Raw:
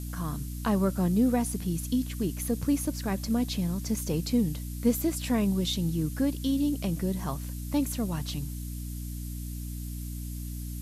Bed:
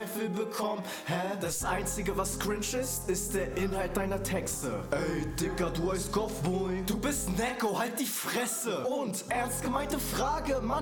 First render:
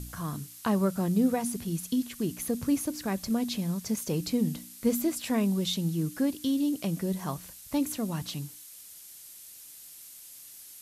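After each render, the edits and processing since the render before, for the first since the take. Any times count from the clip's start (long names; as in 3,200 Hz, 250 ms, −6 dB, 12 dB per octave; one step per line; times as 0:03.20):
hum removal 60 Hz, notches 5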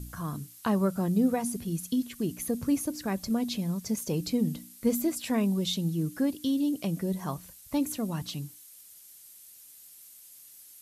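broadband denoise 6 dB, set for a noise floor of −49 dBFS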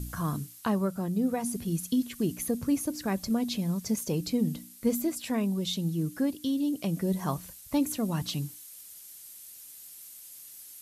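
speech leveller within 4 dB 0.5 s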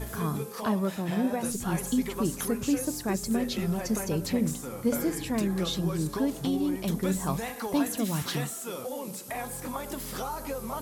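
mix in bed −4.5 dB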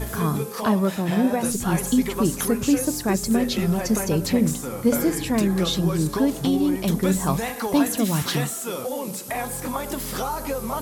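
level +7 dB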